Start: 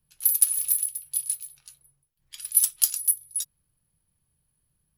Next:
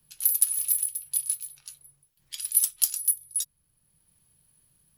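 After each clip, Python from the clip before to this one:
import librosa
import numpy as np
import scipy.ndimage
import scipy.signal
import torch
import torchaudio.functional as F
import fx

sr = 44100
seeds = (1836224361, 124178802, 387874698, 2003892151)

y = fx.band_squash(x, sr, depth_pct=40)
y = F.gain(torch.from_numpy(y), -1.0).numpy()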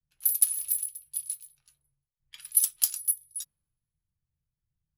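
y = fx.band_widen(x, sr, depth_pct=100)
y = F.gain(torch.from_numpy(y), -5.5).numpy()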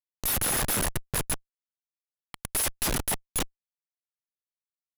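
y = fx.schmitt(x, sr, flips_db=-33.5)
y = F.gain(torch.from_numpy(y), 6.5).numpy()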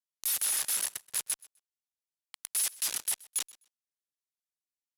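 y = fx.bandpass_q(x, sr, hz=7500.0, q=0.61)
y = fx.echo_feedback(y, sr, ms=127, feedback_pct=18, wet_db=-22)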